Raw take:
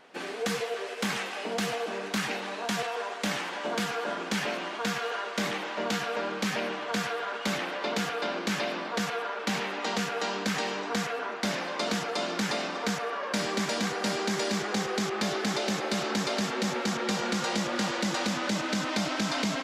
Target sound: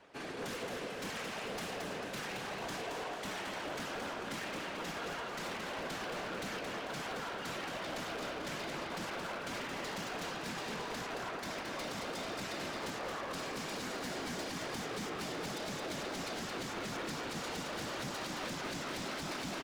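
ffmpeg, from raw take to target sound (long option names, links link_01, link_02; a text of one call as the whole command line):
ffmpeg -i in.wav -filter_complex "[0:a]asplit=2[link_01][link_02];[link_02]asetrate=22050,aresample=44100,atempo=2,volume=-7dB[link_03];[link_01][link_03]amix=inputs=2:normalize=0,areverse,acompressor=mode=upward:threshold=-40dB:ratio=2.5,areverse,alimiter=limit=-22.5dB:level=0:latency=1:release=159,afftfilt=real='hypot(re,im)*cos(2*PI*random(0))':imag='hypot(re,im)*sin(2*PI*random(1))':win_size=512:overlap=0.75,acrossover=split=140|1000[link_04][link_05][link_06];[link_04]acompressor=threshold=-57dB:ratio=6[link_07];[link_07][link_05][link_06]amix=inputs=3:normalize=0,aeval=exprs='0.0178*(abs(mod(val(0)/0.0178+3,4)-2)-1)':channel_layout=same,aecho=1:1:222|444|666|888|1110:0.562|0.247|0.109|0.0479|0.0211,volume=-1dB" out.wav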